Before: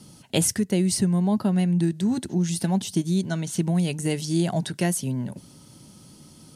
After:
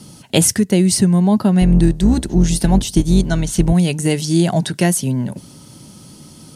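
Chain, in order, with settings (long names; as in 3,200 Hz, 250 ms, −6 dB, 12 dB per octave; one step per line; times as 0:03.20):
0:01.61–0:03.73: sub-octave generator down 2 octaves, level −2 dB
level +8.5 dB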